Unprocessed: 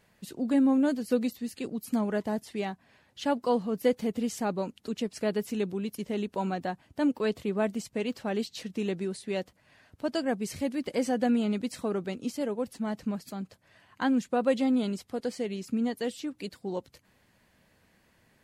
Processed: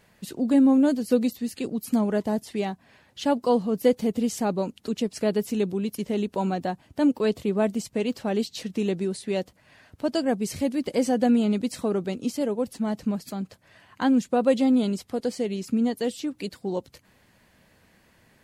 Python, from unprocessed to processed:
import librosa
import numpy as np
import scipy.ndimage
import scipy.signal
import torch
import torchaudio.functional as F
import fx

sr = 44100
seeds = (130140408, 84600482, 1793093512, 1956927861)

y = fx.dynamic_eq(x, sr, hz=1700.0, q=0.84, threshold_db=-47.0, ratio=4.0, max_db=-5)
y = F.gain(torch.from_numpy(y), 5.5).numpy()